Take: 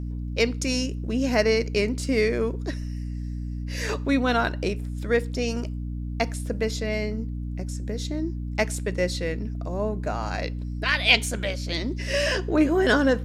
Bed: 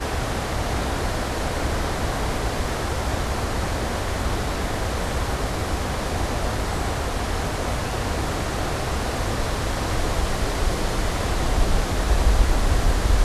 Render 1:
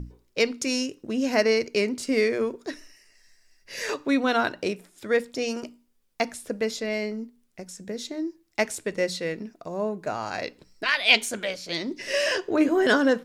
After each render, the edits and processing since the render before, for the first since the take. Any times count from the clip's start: hum notches 60/120/180/240/300 Hz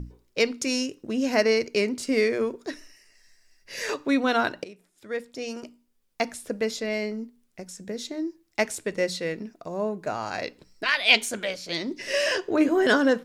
4.64–6.35 s: fade in, from -18 dB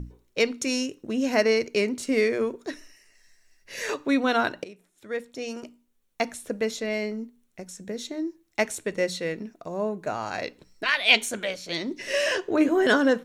band-stop 4.9 kHz, Q 7.6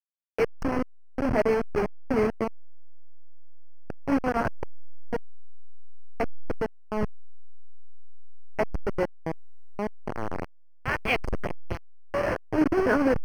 send-on-delta sampling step -18 dBFS; boxcar filter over 12 samples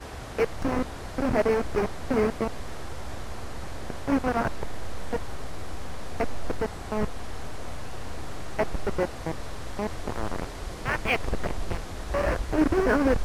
add bed -13.5 dB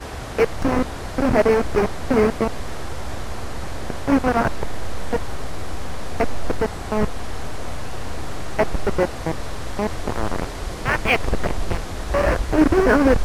trim +7 dB

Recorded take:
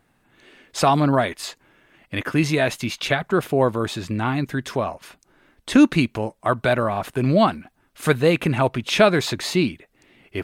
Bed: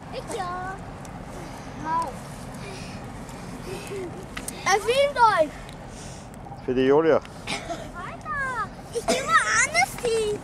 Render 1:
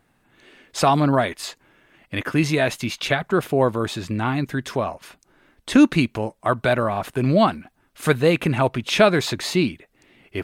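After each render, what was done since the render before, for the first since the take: no audible change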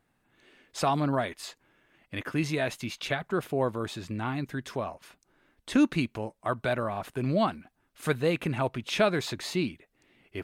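trim -9 dB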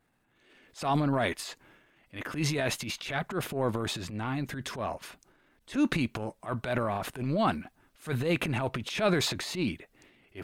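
transient shaper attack -11 dB, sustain +8 dB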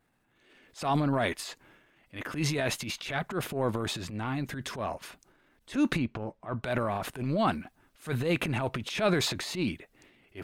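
5.98–6.64 s: tape spacing loss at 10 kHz 23 dB

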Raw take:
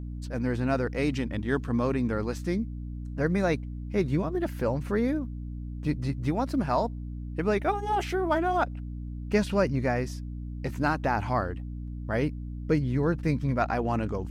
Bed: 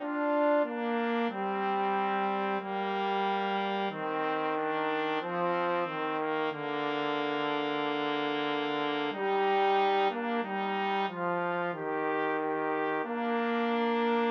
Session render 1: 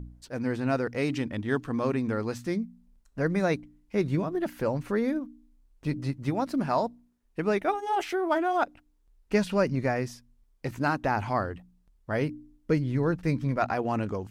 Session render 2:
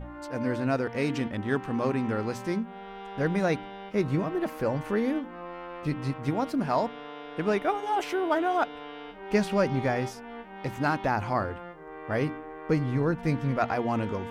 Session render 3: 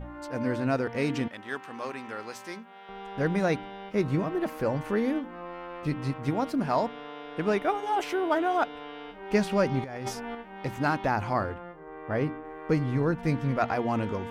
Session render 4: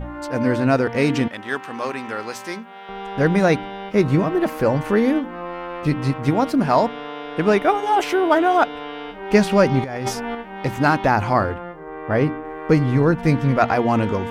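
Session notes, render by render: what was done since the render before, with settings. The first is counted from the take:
de-hum 60 Hz, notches 5
add bed -10.5 dB
1.28–2.89 s: high-pass 1.2 kHz 6 dB/octave; 9.84–10.35 s: compressor with a negative ratio -35 dBFS; 11.54–12.45 s: treble shelf 3.1 kHz -10 dB
trim +9.5 dB

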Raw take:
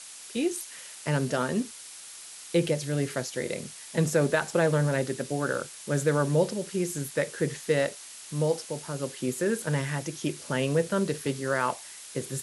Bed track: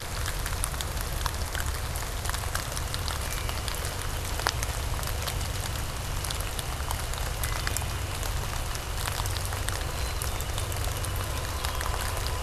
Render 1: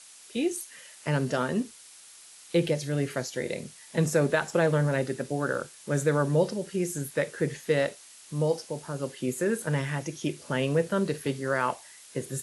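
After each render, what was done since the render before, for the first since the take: noise print and reduce 6 dB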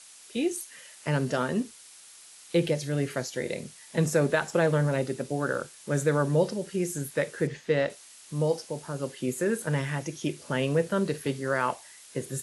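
4.90–5.30 s: peaking EQ 1.7 kHz -6.5 dB 0.33 oct; 7.47–7.90 s: distance through air 89 m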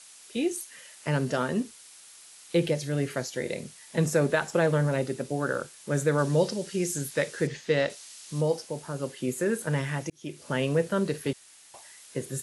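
6.18–8.41 s: peaking EQ 5.1 kHz +6.5 dB 1.8 oct; 10.10–10.51 s: fade in linear; 11.33–11.74 s: room tone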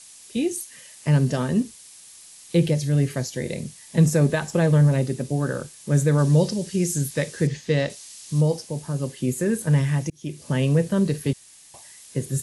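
tone controls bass +12 dB, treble +5 dB; band-stop 1.4 kHz, Q 8.3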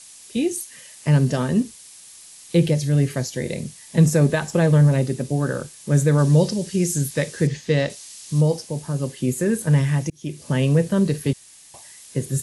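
trim +2 dB

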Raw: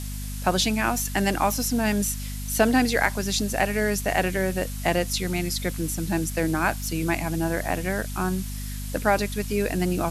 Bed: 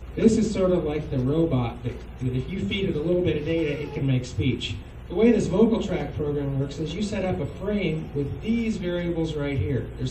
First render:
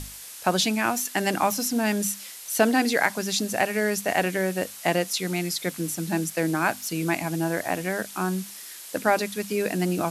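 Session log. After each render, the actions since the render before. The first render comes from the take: hum notches 50/100/150/200/250 Hz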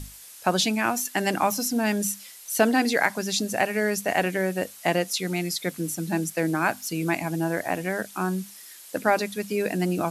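noise reduction 6 dB, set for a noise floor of -41 dBFS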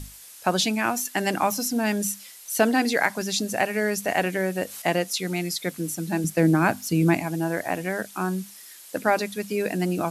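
3.21–4.82 s: upward compressor, threshold -27 dBFS; 6.24–7.21 s: bass shelf 350 Hz +11.5 dB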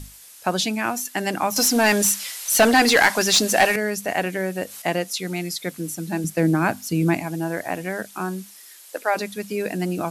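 1.56–3.76 s: overdrive pedal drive 20 dB, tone 7.9 kHz, clips at -5.5 dBFS; 8.18–9.14 s: high-pass 150 Hz -> 470 Hz 24 dB/octave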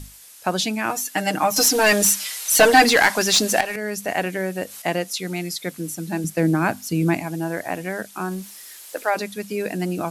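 0.89–2.84 s: comb 6.5 ms, depth 83%; 3.61–4.02 s: fade in linear, from -13 dB; 8.31–9.10 s: companding laws mixed up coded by mu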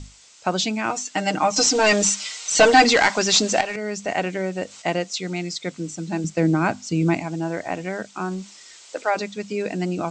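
steep low-pass 8 kHz 96 dB/octave; band-stop 1.7 kHz, Q 9.3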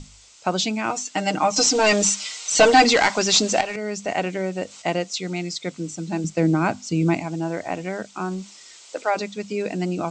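peaking EQ 1.7 kHz -4 dB 0.32 oct; hum notches 50/100 Hz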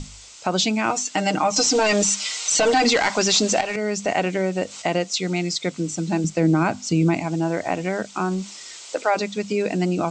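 in parallel at +1 dB: compression, threshold -30 dBFS, peak gain reduction 19 dB; on the sum: peak limiter -10 dBFS, peak gain reduction 8 dB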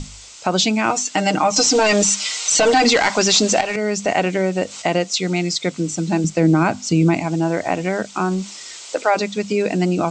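trim +3.5 dB

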